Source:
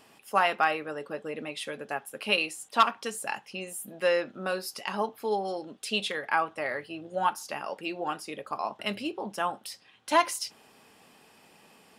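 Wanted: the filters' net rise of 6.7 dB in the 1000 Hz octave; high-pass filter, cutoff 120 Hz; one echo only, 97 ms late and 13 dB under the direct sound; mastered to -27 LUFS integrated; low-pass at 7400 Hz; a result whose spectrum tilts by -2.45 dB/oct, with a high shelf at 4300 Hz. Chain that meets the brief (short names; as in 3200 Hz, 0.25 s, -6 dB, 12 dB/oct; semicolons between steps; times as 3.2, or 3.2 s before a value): HPF 120 Hz; LPF 7400 Hz; bell 1000 Hz +8 dB; high shelf 4300 Hz +3.5 dB; echo 97 ms -13 dB; gain -1.5 dB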